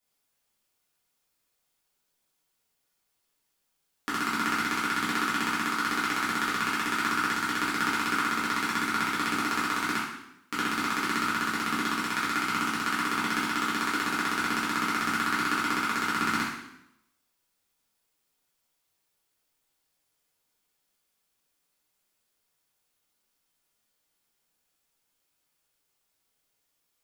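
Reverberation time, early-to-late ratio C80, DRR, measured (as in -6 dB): 0.80 s, 4.5 dB, -9.0 dB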